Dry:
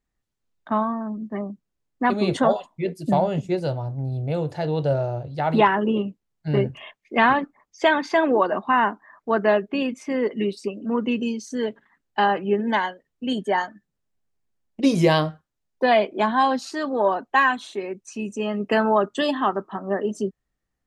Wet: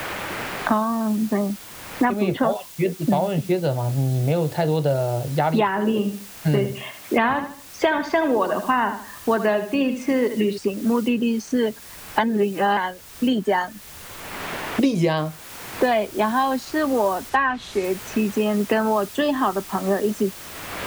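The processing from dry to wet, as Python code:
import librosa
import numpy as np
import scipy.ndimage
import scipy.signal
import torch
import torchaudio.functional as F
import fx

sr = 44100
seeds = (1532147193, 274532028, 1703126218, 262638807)

y = fx.lowpass(x, sr, hz=fx.line((1.29, 2400.0), (4.64, 5000.0)), slope=24, at=(1.29, 4.64), fade=0.02)
y = fx.echo_feedback(y, sr, ms=75, feedback_pct=28, wet_db=-11, at=(5.68, 10.58))
y = fx.noise_floor_step(y, sr, seeds[0], at_s=15.17, before_db=-50, after_db=-41, tilt_db=0.0)
y = fx.env_lowpass_down(y, sr, base_hz=2600.0, full_db=-15.0, at=(17.29, 17.83), fade=0.02)
y = fx.edit(y, sr, fx.reverse_span(start_s=12.19, length_s=0.58), tone=tone)
y = fx.peak_eq(y, sr, hz=81.0, db=5.0, octaves=1.2)
y = fx.band_squash(y, sr, depth_pct=100)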